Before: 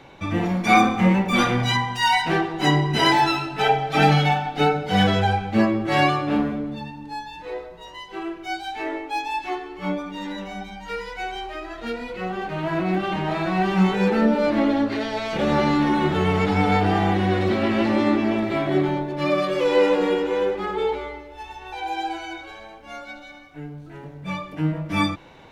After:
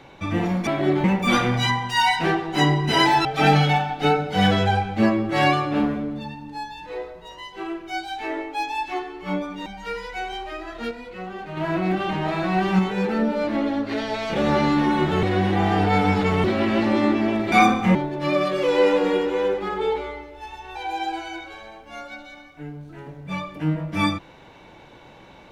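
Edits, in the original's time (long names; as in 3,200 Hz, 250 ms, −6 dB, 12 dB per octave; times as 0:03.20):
0:00.67–0:01.10: swap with 0:18.55–0:18.92
0:03.31–0:03.81: remove
0:10.22–0:10.69: remove
0:11.94–0:12.60: clip gain −5.5 dB
0:13.82–0:14.94: clip gain −3.5 dB
0:16.26–0:17.47: reverse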